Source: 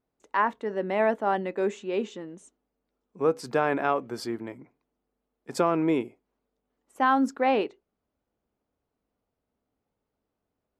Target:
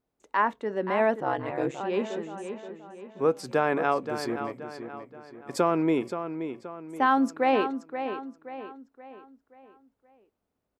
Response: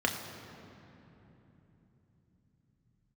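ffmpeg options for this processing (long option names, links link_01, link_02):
-filter_complex "[0:a]asplit=2[link_01][link_02];[link_02]adelay=526,lowpass=frequency=4500:poles=1,volume=-9dB,asplit=2[link_03][link_04];[link_04]adelay=526,lowpass=frequency=4500:poles=1,volume=0.44,asplit=2[link_05][link_06];[link_06]adelay=526,lowpass=frequency=4500:poles=1,volume=0.44,asplit=2[link_07][link_08];[link_08]adelay=526,lowpass=frequency=4500:poles=1,volume=0.44,asplit=2[link_09][link_10];[link_10]adelay=526,lowpass=frequency=4500:poles=1,volume=0.44[link_11];[link_01][link_03][link_05][link_07][link_09][link_11]amix=inputs=6:normalize=0,asettb=1/sr,asplit=3[link_12][link_13][link_14];[link_12]atrim=end=1.204[link_15];[link_13]atrim=start=1.2:end=1.81,asetpts=PTS-STARTPTS,afade=type=in:duration=0.004:curve=qsin,afade=type=out:start_time=0.606:duration=0.004:curve=qsin,aeval=exprs='val(0)*sin(2*PI*68*n/s)':channel_layout=same[link_16];[link_14]atrim=start=1.806[link_17];[link_15][link_16]acrossfade=duration=0.004:curve1=hsin:curve2=qsin[link_18];[link_18][link_17]acrossfade=duration=0.004:curve1=qsin:curve2=hsin"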